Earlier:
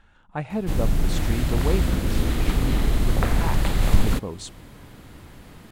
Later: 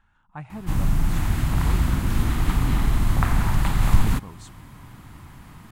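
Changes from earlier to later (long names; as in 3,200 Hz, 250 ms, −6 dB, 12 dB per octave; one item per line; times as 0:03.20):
speech −8.5 dB
master: add octave-band graphic EQ 125/500/1,000/4,000 Hz +4/−11/+7/−4 dB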